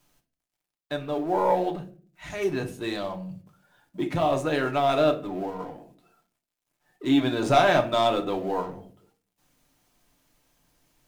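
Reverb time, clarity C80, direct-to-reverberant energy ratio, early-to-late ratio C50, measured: 0.45 s, 19.0 dB, 3.0 dB, 13.5 dB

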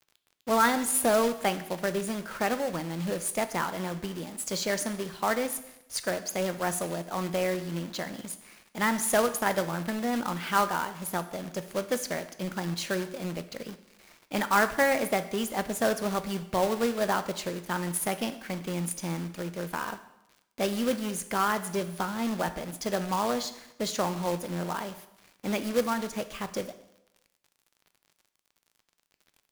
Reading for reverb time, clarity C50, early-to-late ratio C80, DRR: 0.90 s, 13.5 dB, 16.0 dB, 10.5 dB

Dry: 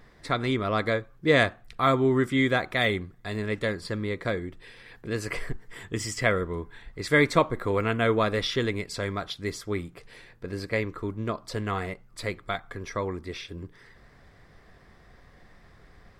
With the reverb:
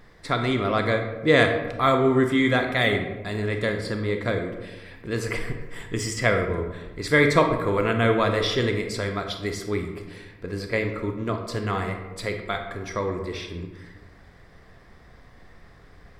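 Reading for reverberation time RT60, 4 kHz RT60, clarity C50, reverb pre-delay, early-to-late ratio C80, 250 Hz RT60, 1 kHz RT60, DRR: 1.2 s, 0.65 s, 6.5 dB, 28 ms, 9.0 dB, 1.5 s, 1.1 s, 5.0 dB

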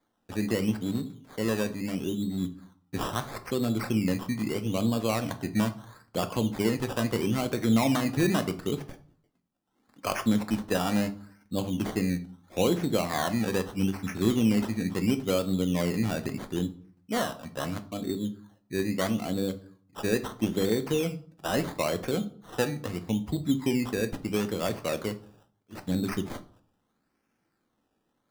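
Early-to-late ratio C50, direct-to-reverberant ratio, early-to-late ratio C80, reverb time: 15.5 dB, 9.0 dB, 20.5 dB, 0.55 s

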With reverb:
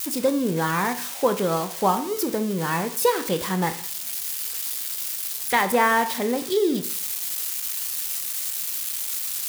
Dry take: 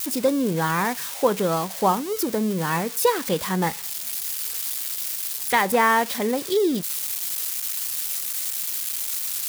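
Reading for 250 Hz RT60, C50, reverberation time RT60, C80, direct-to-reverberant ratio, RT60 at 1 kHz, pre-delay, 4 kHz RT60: 0.50 s, 13.0 dB, 0.45 s, 17.0 dB, 9.0 dB, 0.50 s, 17 ms, 0.45 s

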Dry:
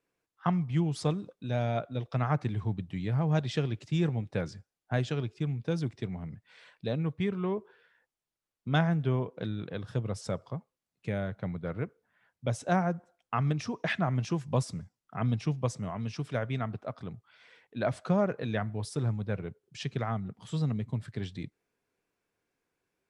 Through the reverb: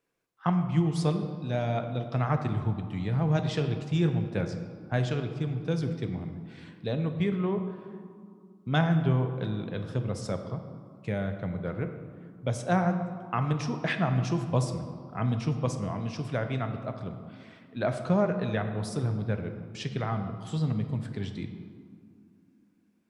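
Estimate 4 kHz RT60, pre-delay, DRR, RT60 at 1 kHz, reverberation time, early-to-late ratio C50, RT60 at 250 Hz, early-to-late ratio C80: 1.1 s, 5 ms, 6.5 dB, 2.3 s, 2.3 s, 8.0 dB, 3.5 s, 9.0 dB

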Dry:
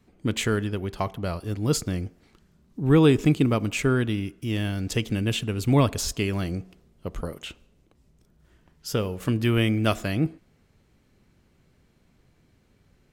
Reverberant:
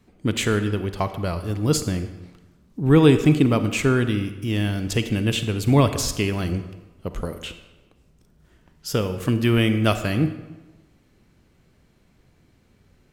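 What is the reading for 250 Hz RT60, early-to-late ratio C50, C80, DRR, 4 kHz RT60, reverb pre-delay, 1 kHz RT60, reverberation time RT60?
1.1 s, 10.5 dB, 12.5 dB, 10.0 dB, 0.80 s, 36 ms, 1.2 s, 1.2 s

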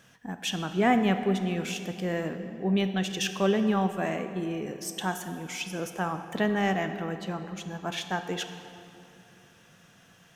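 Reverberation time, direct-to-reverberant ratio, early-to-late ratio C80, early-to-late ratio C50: 2.8 s, 8.0 dB, 9.5 dB, 9.0 dB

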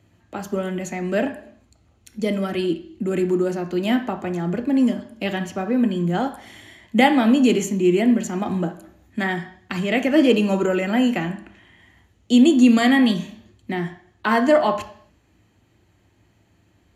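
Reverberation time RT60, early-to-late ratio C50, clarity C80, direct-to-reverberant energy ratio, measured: 0.60 s, 12.5 dB, 15.5 dB, 7.0 dB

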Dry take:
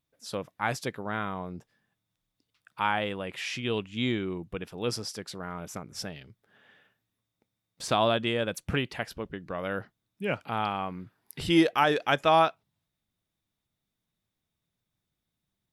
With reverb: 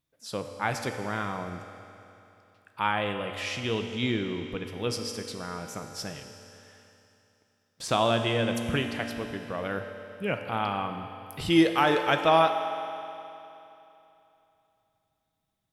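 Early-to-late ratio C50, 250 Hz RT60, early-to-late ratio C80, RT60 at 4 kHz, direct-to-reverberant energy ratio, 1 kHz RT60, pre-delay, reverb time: 6.5 dB, 3.0 s, 7.0 dB, 2.9 s, 5.0 dB, 3.0 s, 4 ms, 3.0 s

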